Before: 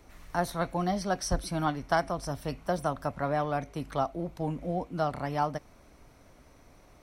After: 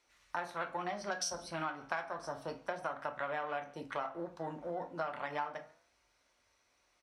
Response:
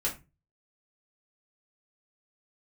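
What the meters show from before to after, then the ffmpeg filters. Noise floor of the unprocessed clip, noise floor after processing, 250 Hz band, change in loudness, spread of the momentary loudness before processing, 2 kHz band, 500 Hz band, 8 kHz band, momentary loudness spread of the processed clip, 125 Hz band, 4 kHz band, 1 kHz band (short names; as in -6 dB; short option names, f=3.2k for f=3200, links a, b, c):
-57 dBFS, -75 dBFS, -13.5 dB, -8.0 dB, 5 LU, -3.0 dB, -8.5 dB, -3.5 dB, 5 LU, -18.0 dB, -5.0 dB, -7.5 dB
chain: -filter_complex "[0:a]afwtdn=0.00891,aeval=exprs='0.224*(cos(1*acos(clip(val(0)/0.224,-1,1)))-cos(1*PI/2))+0.0316*(cos(2*acos(clip(val(0)/0.224,-1,1)))-cos(2*PI/2))':c=same,lowpass=6.6k,aderivative,asplit=2[a][b];[1:a]atrim=start_sample=2205,afade=t=out:st=0.17:d=0.01,atrim=end_sample=7938[c];[b][c]afir=irnorm=-1:irlink=0,volume=-6dB[d];[a][d]amix=inputs=2:normalize=0,acontrast=90,highshelf=f=5k:g=-10.5,asplit=2[e][f];[f]adelay=139.9,volume=-27dB,highshelf=f=4k:g=-3.15[g];[e][g]amix=inputs=2:normalize=0,acompressor=threshold=-42dB:ratio=5,highpass=49,flanger=delay=8.5:depth=6.4:regen=-90:speed=0.31:shape=triangular,volume=12dB"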